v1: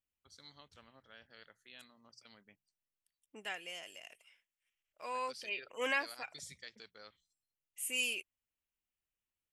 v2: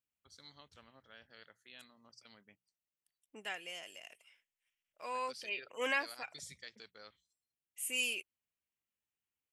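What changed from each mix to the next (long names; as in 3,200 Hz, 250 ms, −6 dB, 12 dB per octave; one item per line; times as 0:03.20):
second voice: add high-pass filter 81 Hz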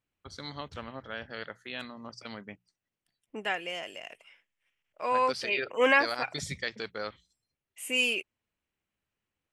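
first voice +7.5 dB
master: remove first-order pre-emphasis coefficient 0.8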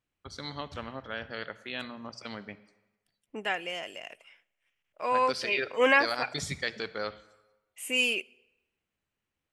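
reverb: on, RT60 1.1 s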